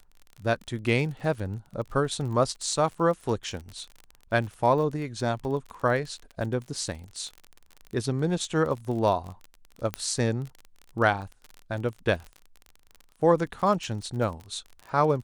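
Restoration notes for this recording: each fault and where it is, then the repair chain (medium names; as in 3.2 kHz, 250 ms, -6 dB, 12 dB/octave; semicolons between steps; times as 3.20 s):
crackle 35 per s -34 dBFS
9.94 s: pop -14 dBFS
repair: de-click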